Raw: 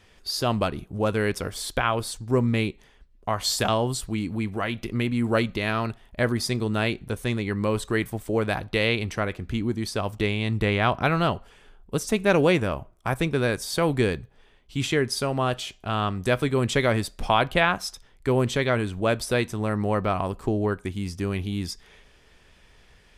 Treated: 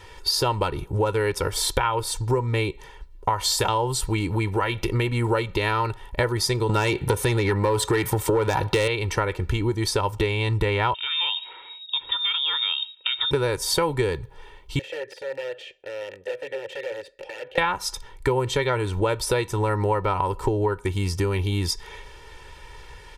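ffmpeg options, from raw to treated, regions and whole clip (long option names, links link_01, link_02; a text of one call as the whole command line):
ffmpeg -i in.wav -filter_complex "[0:a]asettb=1/sr,asplit=3[link_01][link_02][link_03];[link_01]atrim=end=6.694[link_04];[link_02]atrim=start=6.69:end=8.88,asetpts=PTS-STARTPTS,afade=type=in:duration=0.004:curve=qsin,afade=type=out:start_time=2.186:duration=0.004:curve=qsin,highpass=83,acompressor=threshold=-27dB:ratio=2.5:attack=3.2:release=140:knee=1:detection=peak,aeval=exprs='0.266*sin(PI/2*3.16*val(0)/0.266)':channel_layout=same[link_05];[link_03]atrim=start=8.876[link_06];[link_04][link_05]acrossfade=duration=0.004:curve1=hsin:curve2=qsin[link_07];[link_07][link_06]acrossfade=duration=0.004:curve1=qsin:curve2=hsin,asettb=1/sr,asplit=3[link_08][link_09][link_10];[link_08]atrim=end=10.944[link_11];[link_09]atrim=start=10.94:end=13.31,asetpts=PTS-STARTPTS,afade=type=in:duration=0.004:curve=qsin,afade=type=out:start_time=2.366:duration=0.004:curve=qsin,acompressor=threshold=-30dB:ratio=6:attack=3.2:release=140:knee=1:detection=peak,lowpass=frequency=3200:width_type=q:width=0.5098,lowpass=frequency=3200:width_type=q:width=0.6013,lowpass=frequency=3200:width_type=q:width=0.9,lowpass=frequency=3200:width_type=q:width=2.563,afreqshift=-3800[link_12];[link_10]atrim=start=13.306[link_13];[link_11][link_12]acrossfade=duration=0.004:curve1=hsin:curve2=qsin[link_14];[link_14][link_13]acrossfade=duration=0.004:curve1=qsin:curve2=hsin,asettb=1/sr,asplit=3[link_15][link_16][link_17];[link_15]atrim=end=14.794[link_18];[link_16]atrim=start=14.79:end=17.58,asetpts=PTS-STARTPTS,afade=type=in:duration=0.004:curve=qsin,afade=type=out:start_time=2.786:duration=0.004:curve=qsin,acompressor=threshold=-29dB:ratio=3:attack=3.2:release=140:knee=1:detection=peak,aeval=exprs='(mod(17.8*val(0)+1,2)-1)/17.8':channel_layout=same,asplit=3[link_19][link_20][link_21];[link_19]bandpass=frequency=530:width_type=q:width=8,volume=0dB[link_22];[link_20]bandpass=frequency=1840:width_type=q:width=8,volume=-6dB[link_23];[link_21]bandpass=frequency=2480:width_type=q:width=8,volume=-9dB[link_24];[link_22][link_23][link_24]amix=inputs=3:normalize=0[link_25];[link_17]atrim=start=17.576[link_26];[link_18][link_25]acrossfade=duration=0.004:curve1=hsin:curve2=qsin[link_27];[link_27][link_26]acrossfade=duration=0.004:curve1=qsin:curve2=hsin,equalizer=frequency=960:width_type=o:width=0.25:gain=10,aecho=1:1:2.2:0.76,acompressor=threshold=-28dB:ratio=6,volume=8dB" out.wav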